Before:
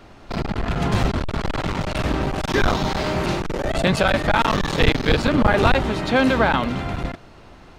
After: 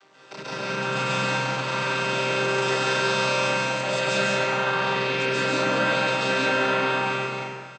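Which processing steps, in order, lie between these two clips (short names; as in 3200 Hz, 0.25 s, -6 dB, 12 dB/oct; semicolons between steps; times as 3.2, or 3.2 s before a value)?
chord vocoder minor triad, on C3; HPF 530 Hz 6 dB/oct; tilt +4 dB/oct; limiter -24 dBFS, peak gain reduction 11 dB; 4.23–5.14 air absorption 130 m; loudspeakers at several distances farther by 47 m 0 dB, 61 m -3 dB, 74 m -12 dB; plate-style reverb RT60 1.5 s, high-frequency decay 0.65×, pre-delay 0.12 s, DRR -6.5 dB; gain -1.5 dB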